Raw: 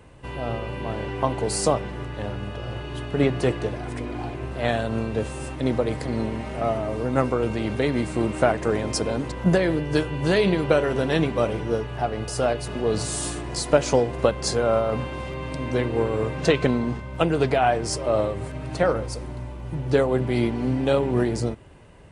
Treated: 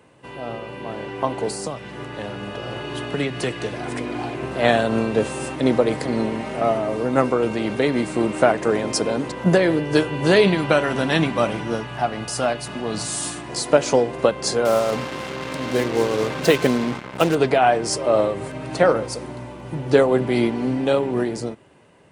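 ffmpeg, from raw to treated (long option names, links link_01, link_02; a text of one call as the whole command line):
ffmpeg -i in.wav -filter_complex "[0:a]asettb=1/sr,asplit=3[link_01][link_02][link_03];[link_01]atrim=end=1.504[link_04];[link_02]atrim=start=1.5:end=4.43,asetpts=PTS-STARTPTS,afade=type=in:duration=0.004:curve=qsin,afade=type=out:start_time=2.926:duration=0.004:curve=qsin,acrossover=split=180|1500[link_05][link_06][link_07];[link_05]acompressor=threshold=-32dB:ratio=4[link_08];[link_06]acompressor=threshold=-33dB:ratio=4[link_09];[link_07]acompressor=threshold=-35dB:ratio=4[link_10];[link_08][link_09][link_10]amix=inputs=3:normalize=0[link_11];[link_03]atrim=start=4.426[link_12];[link_04][link_11]acrossfade=duration=0.004:curve1=hsin:curve2=qsin[link_13];[link_13][link_12]acrossfade=duration=0.004:curve1=qsin:curve2=hsin,asettb=1/sr,asplit=3[link_14][link_15][link_16];[link_14]atrim=end=10.474[link_17];[link_15]atrim=start=10.47:end=13.49,asetpts=PTS-STARTPTS,afade=type=in:duration=0.004:curve=qsin,afade=type=out:start_time=3.016:duration=0.004:curve=qsin,equalizer=frequency=440:width=2.1:gain=-10[link_18];[link_16]atrim=start=13.486[link_19];[link_17][link_18]acrossfade=duration=0.004:curve1=hsin:curve2=qsin[link_20];[link_20][link_19]acrossfade=duration=0.004:curve1=qsin:curve2=hsin,asettb=1/sr,asplit=3[link_21][link_22][link_23];[link_21]atrim=end=14.654[link_24];[link_22]atrim=start=14.65:end=17.35,asetpts=PTS-STARTPTS,afade=type=in:duration=0.004:curve=qsin,afade=type=out:start_time=2.696:duration=0.004:curve=qsin,acrusher=bits=4:mix=0:aa=0.5[link_25];[link_23]atrim=start=17.346[link_26];[link_24][link_25]acrossfade=duration=0.004:curve1=hsin:curve2=qsin[link_27];[link_27][link_26]acrossfade=duration=0.004:curve1=qsin:curve2=hsin,highpass=170,dynaudnorm=framelen=180:gausssize=17:maxgain=11.5dB,volume=-1dB" out.wav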